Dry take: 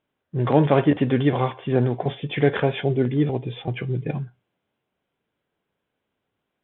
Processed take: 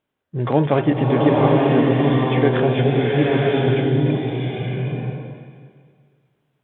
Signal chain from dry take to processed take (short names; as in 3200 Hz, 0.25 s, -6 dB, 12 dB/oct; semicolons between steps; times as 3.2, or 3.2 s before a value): bloom reverb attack 0.94 s, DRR -3.5 dB